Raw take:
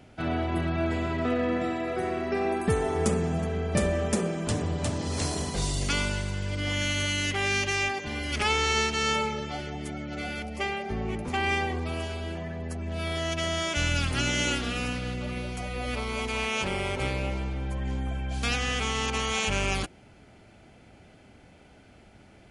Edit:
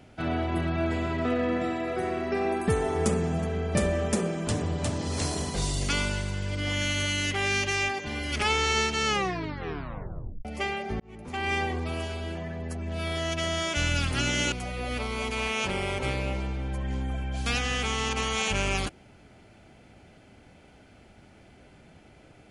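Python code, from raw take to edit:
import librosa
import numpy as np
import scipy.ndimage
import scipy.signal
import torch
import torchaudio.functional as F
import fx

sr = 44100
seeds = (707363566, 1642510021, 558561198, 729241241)

y = fx.edit(x, sr, fx.tape_stop(start_s=9.06, length_s=1.39),
    fx.fade_in_span(start_s=11.0, length_s=0.61),
    fx.cut(start_s=14.52, length_s=0.97), tone=tone)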